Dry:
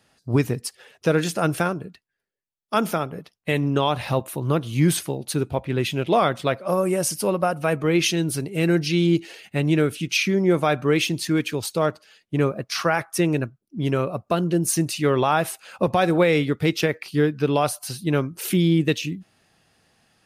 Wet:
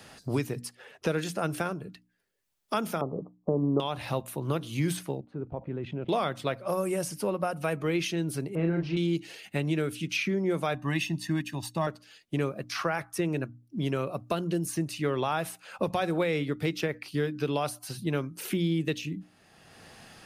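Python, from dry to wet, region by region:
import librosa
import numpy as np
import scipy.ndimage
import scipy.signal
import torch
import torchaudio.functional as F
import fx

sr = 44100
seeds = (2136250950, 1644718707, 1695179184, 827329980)

y = fx.chain(x, sr, fx.steep_lowpass(hz=1200.0, slope=96),
    fx.peak_eq(hz=360.0, db=8.5, octaves=2.8), at=(3.01, 3.8))
y = fx.chain(y, sr, fx.lowpass(hz=1000.0, slope=12),
    fx.level_steps(step_db=16), at=(5.2, 6.09))
y = fx.chain(y, sr, fx.zero_step(step_db=-34.0),
    fx.lowpass(hz=1300.0, slope=12),
    fx.doubler(ms=36.0, db=-4), at=(8.55, 8.97))
y = fx.chain(y, sr, fx.comb(ms=1.1, depth=0.91),
    fx.upward_expand(threshold_db=-42.0, expansion=1.5), at=(10.74, 11.87))
y = fx.hum_notches(y, sr, base_hz=60, count=5)
y = fx.band_squash(y, sr, depth_pct=70)
y = y * 10.0 ** (-8.5 / 20.0)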